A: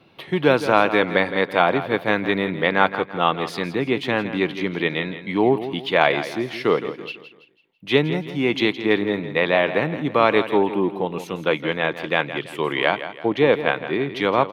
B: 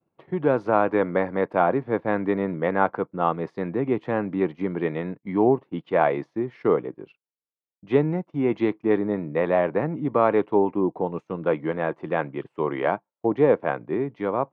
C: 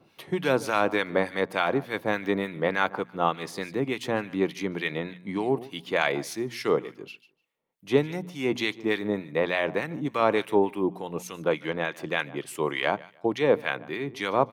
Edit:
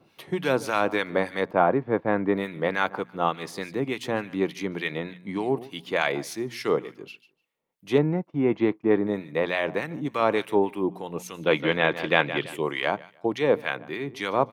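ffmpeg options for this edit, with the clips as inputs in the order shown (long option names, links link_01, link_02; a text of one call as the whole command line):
ffmpeg -i take0.wav -i take1.wav -i take2.wav -filter_complex "[1:a]asplit=2[link_01][link_02];[2:a]asplit=4[link_03][link_04][link_05][link_06];[link_03]atrim=end=1.512[link_07];[link_01]atrim=start=1.508:end=2.352[link_08];[link_04]atrim=start=2.348:end=7.982[link_09];[link_02]atrim=start=7.978:end=9.072[link_10];[link_05]atrim=start=9.068:end=11.53[link_11];[0:a]atrim=start=11.37:end=12.65[link_12];[link_06]atrim=start=12.49[link_13];[link_07][link_08]acrossfade=duration=0.004:curve1=hsin:curve2=hsin[link_14];[link_14][link_09]acrossfade=duration=0.004:curve1=hsin:curve2=hsin[link_15];[link_15][link_10]acrossfade=duration=0.004:curve1=hsin:curve2=hsin[link_16];[link_16][link_11]acrossfade=duration=0.004:curve1=hsin:curve2=hsin[link_17];[link_17][link_12]acrossfade=duration=0.16:curve1=tri:curve2=tri[link_18];[link_18][link_13]acrossfade=duration=0.16:curve1=tri:curve2=tri" out.wav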